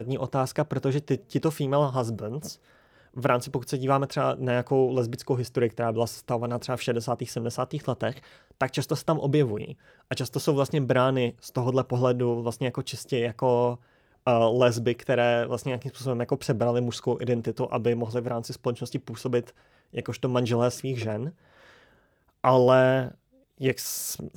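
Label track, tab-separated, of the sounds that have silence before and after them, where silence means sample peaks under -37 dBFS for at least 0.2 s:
3.160000	8.190000	sound
8.610000	9.730000	sound
10.110000	13.760000	sound
14.270000	19.490000	sound
19.950000	21.300000	sound
22.440000	23.110000	sound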